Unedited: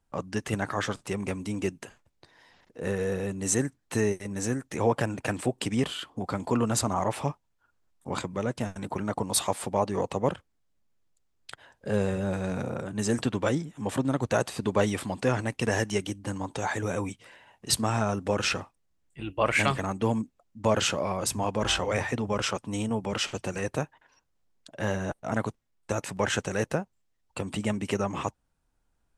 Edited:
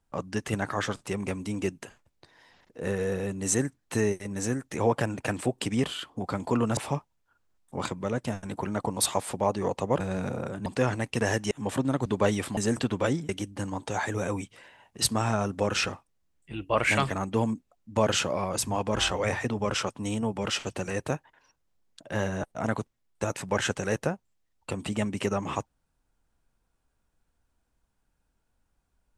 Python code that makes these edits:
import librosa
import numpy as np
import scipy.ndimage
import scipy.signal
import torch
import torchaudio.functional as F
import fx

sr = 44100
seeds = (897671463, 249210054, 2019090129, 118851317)

y = fx.edit(x, sr, fx.cut(start_s=6.77, length_s=0.33),
    fx.cut(start_s=10.33, length_s=2.0),
    fx.swap(start_s=12.99, length_s=0.72, other_s=15.12, other_length_s=0.85),
    fx.cut(start_s=14.26, length_s=0.35), tone=tone)